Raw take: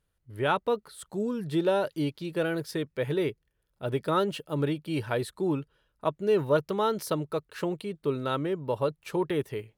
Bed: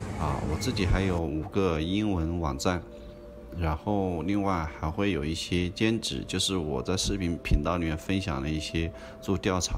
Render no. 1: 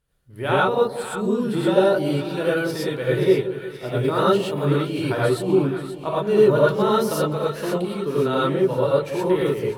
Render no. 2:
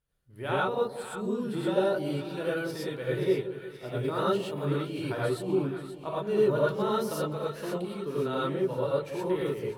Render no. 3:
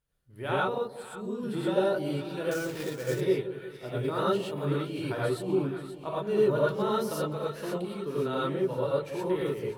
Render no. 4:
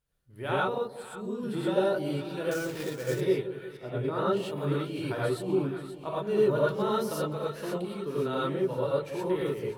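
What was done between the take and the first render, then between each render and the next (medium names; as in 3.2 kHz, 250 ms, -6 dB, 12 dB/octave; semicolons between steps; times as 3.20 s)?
two-band feedback delay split 860 Hz, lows 180 ms, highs 527 ms, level -11 dB; gated-style reverb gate 140 ms rising, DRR -6.5 dB
trim -9 dB
0.78–1.43 s: gain -4 dB; 2.51–3.21 s: sample-rate reducer 7.4 kHz, jitter 20%
3.77–4.37 s: treble shelf 3.6 kHz -10.5 dB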